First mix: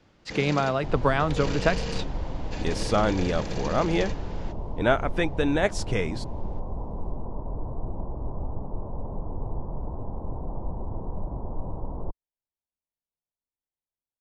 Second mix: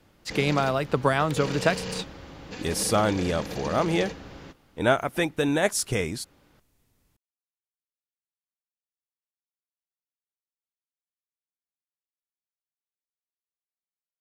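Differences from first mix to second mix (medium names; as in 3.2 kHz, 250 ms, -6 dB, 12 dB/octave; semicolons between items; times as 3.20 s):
speech: remove distance through air 110 m; second sound: muted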